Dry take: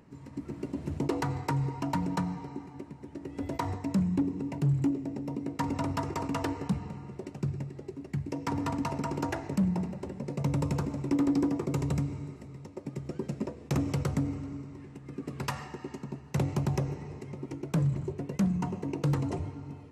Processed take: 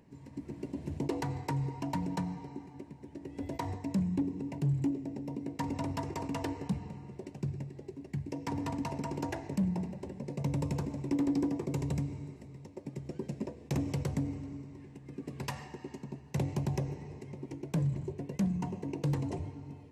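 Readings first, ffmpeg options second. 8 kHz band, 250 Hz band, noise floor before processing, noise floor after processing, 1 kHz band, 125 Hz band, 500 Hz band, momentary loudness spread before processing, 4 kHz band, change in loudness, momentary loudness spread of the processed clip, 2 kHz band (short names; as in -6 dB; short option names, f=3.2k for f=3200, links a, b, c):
-3.5 dB, -3.5 dB, -49 dBFS, -52 dBFS, -5.0 dB, -3.5 dB, -3.5 dB, 13 LU, -3.5 dB, -3.5 dB, 13 LU, -5.0 dB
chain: -af "equalizer=f=1.3k:w=5.5:g=-13,volume=-3.5dB"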